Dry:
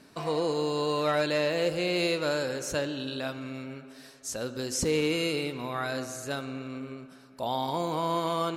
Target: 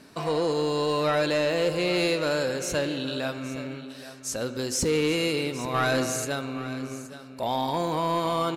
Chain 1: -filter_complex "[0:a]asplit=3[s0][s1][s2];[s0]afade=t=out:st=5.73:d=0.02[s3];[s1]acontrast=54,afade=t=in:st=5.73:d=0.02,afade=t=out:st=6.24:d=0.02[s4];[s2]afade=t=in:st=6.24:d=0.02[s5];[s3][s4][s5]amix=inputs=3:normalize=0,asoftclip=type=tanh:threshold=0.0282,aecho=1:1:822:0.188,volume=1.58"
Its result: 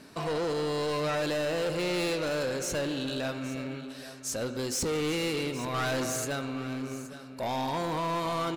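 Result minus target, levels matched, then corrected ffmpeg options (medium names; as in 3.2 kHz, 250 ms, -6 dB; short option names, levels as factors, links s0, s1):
saturation: distortion +11 dB
-filter_complex "[0:a]asplit=3[s0][s1][s2];[s0]afade=t=out:st=5.73:d=0.02[s3];[s1]acontrast=54,afade=t=in:st=5.73:d=0.02,afade=t=out:st=6.24:d=0.02[s4];[s2]afade=t=in:st=6.24:d=0.02[s5];[s3][s4][s5]amix=inputs=3:normalize=0,asoftclip=type=tanh:threshold=0.0944,aecho=1:1:822:0.188,volume=1.58"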